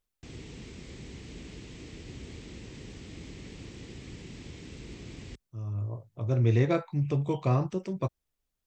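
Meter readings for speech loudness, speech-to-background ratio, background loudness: -29.5 LUFS, 16.0 dB, -45.5 LUFS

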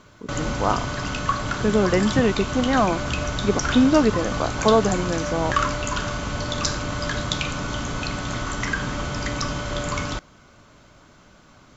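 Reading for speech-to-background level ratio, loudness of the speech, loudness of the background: 4.5 dB, -22.0 LUFS, -26.5 LUFS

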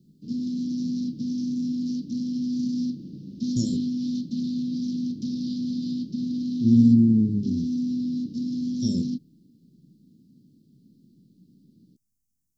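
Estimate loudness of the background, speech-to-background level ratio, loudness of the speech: -29.0 LUFS, 7.0 dB, -22.0 LUFS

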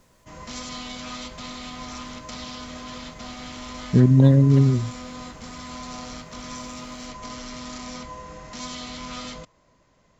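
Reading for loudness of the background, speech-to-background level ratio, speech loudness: -36.5 LUFS, 19.5 dB, -17.0 LUFS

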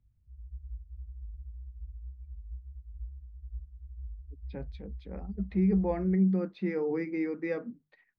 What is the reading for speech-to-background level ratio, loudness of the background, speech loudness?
16.0 dB, -46.0 LUFS, -30.0 LUFS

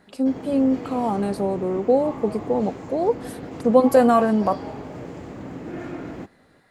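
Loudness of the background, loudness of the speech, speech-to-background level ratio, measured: -35.0 LUFS, -21.5 LUFS, 13.5 dB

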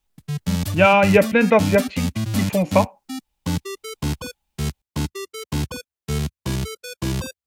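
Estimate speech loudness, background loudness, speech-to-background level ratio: -17.5 LUFS, -27.0 LUFS, 9.5 dB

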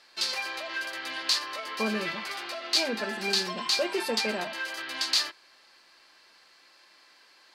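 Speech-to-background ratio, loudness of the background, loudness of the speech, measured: -5.0 dB, -29.5 LUFS, -34.5 LUFS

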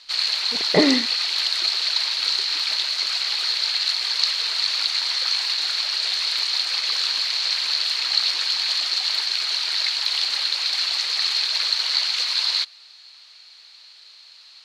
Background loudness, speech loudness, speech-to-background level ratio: -20.0 LUFS, -21.5 LUFS, -1.5 dB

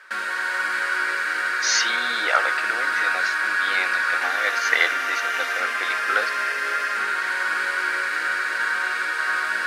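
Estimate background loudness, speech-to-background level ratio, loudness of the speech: -22.5 LUFS, -3.0 dB, -25.5 LUFS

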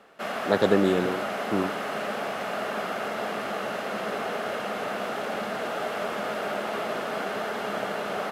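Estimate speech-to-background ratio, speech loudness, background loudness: 4.5 dB, -26.0 LUFS, -30.5 LUFS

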